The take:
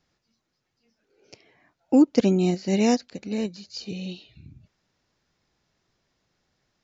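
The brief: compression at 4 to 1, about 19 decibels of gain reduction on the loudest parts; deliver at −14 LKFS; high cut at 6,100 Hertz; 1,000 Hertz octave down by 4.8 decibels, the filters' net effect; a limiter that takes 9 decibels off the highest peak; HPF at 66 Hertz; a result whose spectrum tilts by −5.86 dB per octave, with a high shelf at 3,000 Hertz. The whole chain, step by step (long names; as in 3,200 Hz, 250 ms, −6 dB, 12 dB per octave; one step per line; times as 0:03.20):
high-pass filter 66 Hz
low-pass filter 6,100 Hz
parametric band 1,000 Hz −7.5 dB
high-shelf EQ 3,000 Hz −4 dB
downward compressor 4 to 1, threshold −37 dBFS
level +29 dB
brickwall limiter −4 dBFS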